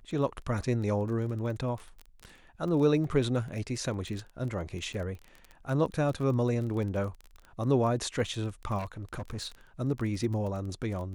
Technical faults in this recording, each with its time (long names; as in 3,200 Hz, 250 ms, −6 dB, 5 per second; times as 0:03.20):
surface crackle 22 per second −36 dBFS
0:08.78–0:09.48: clipping −32.5 dBFS